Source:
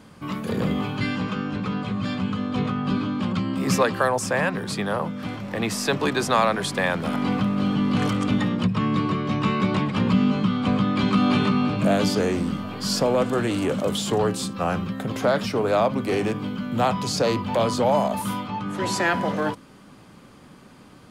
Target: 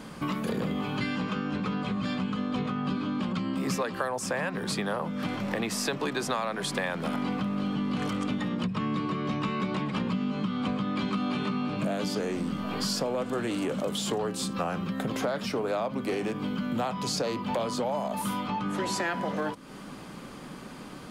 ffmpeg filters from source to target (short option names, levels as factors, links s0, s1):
-af "equalizer=f=97:w=3.4:g=-13,acompressor=threshold=0.02:ratio=6,volume=2"